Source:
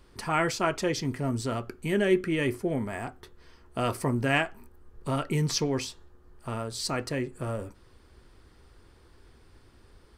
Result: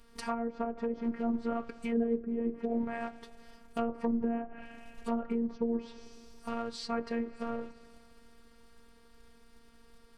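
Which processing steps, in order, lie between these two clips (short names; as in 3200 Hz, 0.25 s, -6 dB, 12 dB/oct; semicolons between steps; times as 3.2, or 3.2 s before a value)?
on a send at -19 dB: reverb RT60 2.9 s, pre-delay 68 ms; on the sum: short-mantissa float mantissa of 2-bit; treble ducked by the level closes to 430 Hz, closed at -23 dBFS; robotiser 232 Hz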